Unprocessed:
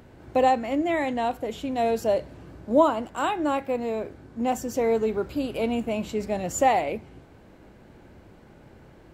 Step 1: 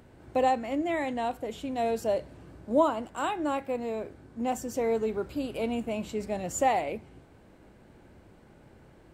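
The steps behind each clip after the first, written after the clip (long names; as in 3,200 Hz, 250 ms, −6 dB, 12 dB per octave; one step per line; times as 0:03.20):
parametric band 8,600 Hz +6.5 dB 0.24 octaves
level −4.5 dB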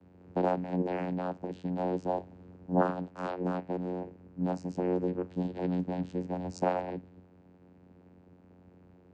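channel vocoder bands 8, saw 90.3 Hz
level −2 dB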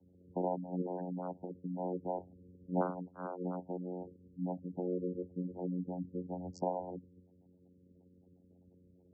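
gate on every frequency bin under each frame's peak −15 dB strong
level −6 dB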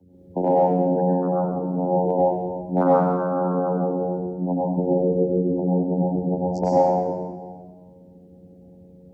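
high-shelf EQ 3,800 Hz −4.5 dB
in parallel at −8.5 dB: asymmetric clip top −26.5 dBFS
on the sum: convolution reverb RT60 1.6 s, pre-delay 91 ms, DRR −6 dB
level +8 dB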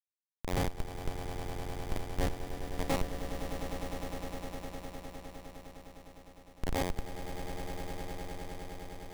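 high-pass filter 1,500 Hz 6 dB per octave
comparator with hysteresis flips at −21.5 dBFS
echo that builds up and dies away 102 ms, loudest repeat 8, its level −12 dB
level +4 dB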